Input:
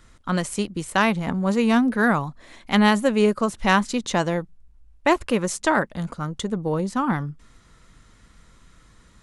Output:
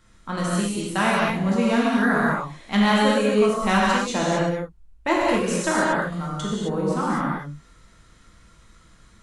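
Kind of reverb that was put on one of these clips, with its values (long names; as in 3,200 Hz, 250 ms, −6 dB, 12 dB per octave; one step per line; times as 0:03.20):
reverb whose tail is shaped and stops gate 290 ms flat, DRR −6 dB
level −6 dB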